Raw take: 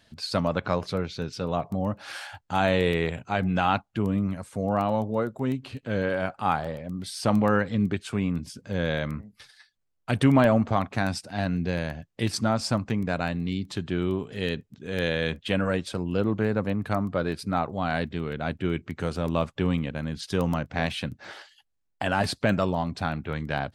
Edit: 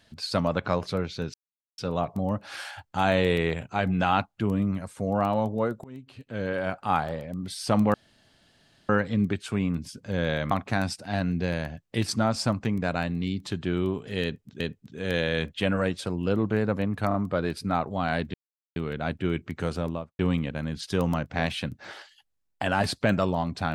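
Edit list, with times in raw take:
1.34 s: insert silence 0.44 s
5.40–6.35 s: fade in, from -22 dB
7.50 s: insert room tone 0.95 s
9.12–10.76 s: delete
14.48–14.85 s: loop, 2 plays
16.96 s: stutter 0.03 s, 3 plays
18.16 s: insert silence 0.42 s
19.12–19.59 s: studio fade out

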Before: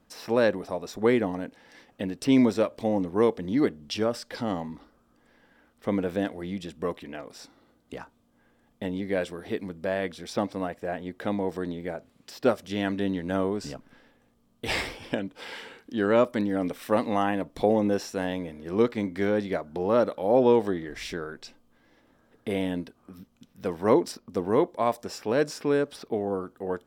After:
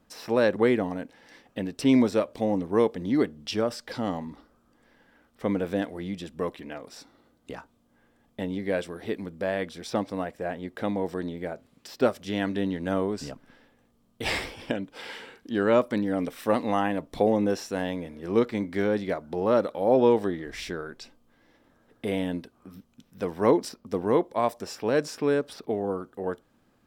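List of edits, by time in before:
0.56–0.99 s: delete

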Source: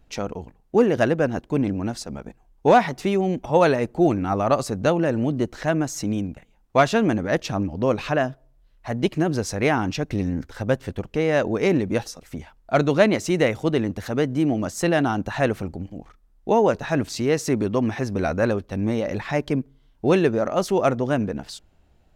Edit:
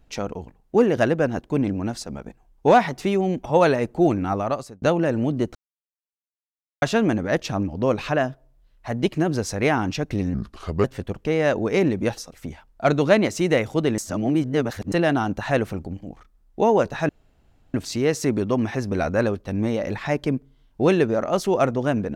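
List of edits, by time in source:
4.27–4.82 s: fade out linear
5.55–6.82 s: mute
10.34–10.73 s: speed 78%
13.87–14.81 s: reverse
16.98 s: insert room tone 0.65 s

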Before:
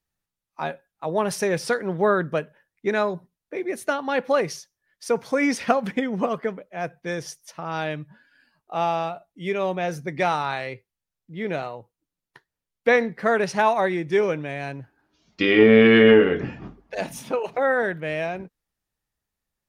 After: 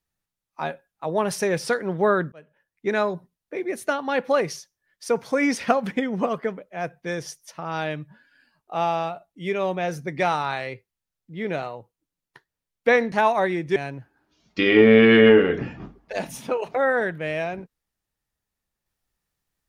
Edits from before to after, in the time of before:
2.32–2.94 s: fade in linear
13.12–13.53 s: delete
14.17–14.58 s: delete

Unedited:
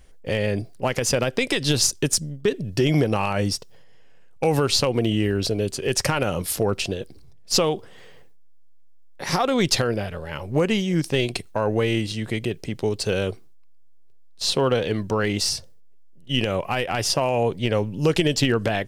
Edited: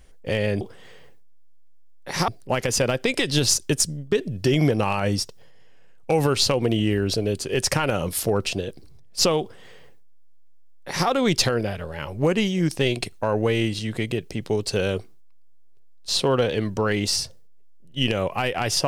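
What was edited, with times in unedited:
7.74–9.41 s: copy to 0.61 s

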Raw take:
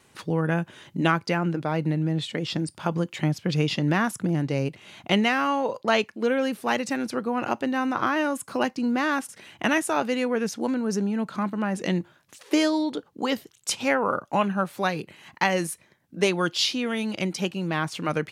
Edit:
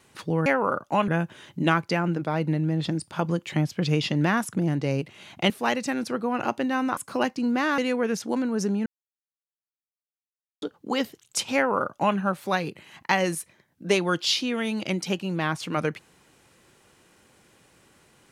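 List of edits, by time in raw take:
2.23–2.52 s: delete
5.17–6.53 s: delete
8.00–8.37 s: delete
9.18–10.10 s: delete
11.18–12.94 s: mute
13.87–14.49 s: copy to 0.46 s

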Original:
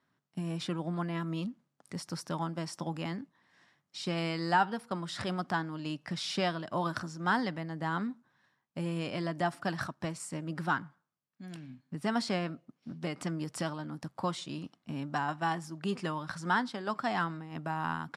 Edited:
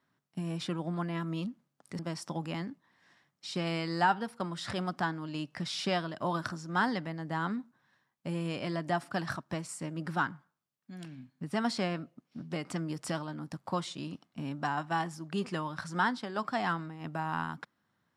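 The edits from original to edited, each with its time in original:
1.99–2.50 s: delete

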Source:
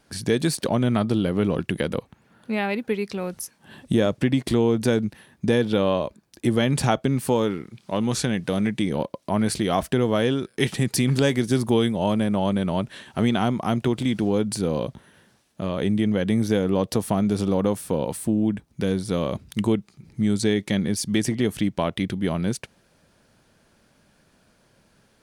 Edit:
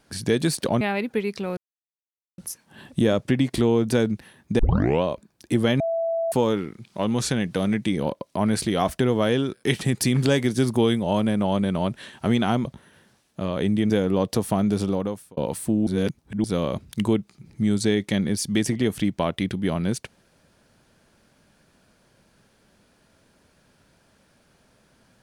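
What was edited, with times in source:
0.81–2.55 s: delete
3.31 s: insert silence 0.81 s
5.52 s: tape start 0.44 s
6.73–7.25 s: bleep 663 Hz -21.5 dBFS
13.58–14.86 s: delete
16.11–16.49 s: delete
17.39–17.96 s: fade out
18.46–19.03 s: reverse

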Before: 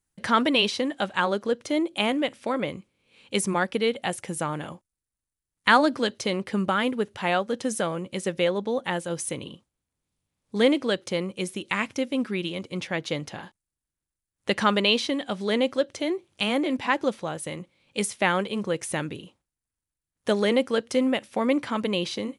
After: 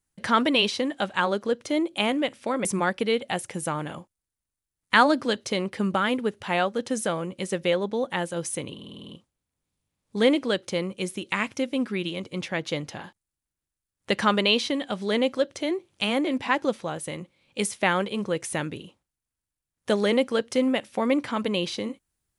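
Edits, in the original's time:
2.65–3.39 s: delete
9.48 s: stutter 0.05 s, 8 plays

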